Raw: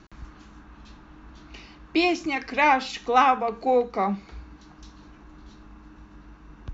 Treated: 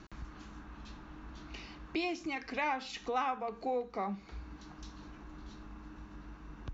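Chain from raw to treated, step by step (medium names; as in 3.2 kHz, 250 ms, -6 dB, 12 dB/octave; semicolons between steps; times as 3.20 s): compression 2:1, threshold -40 dBFS, peak gain reduction 14.5 dB; trim -1.5 dB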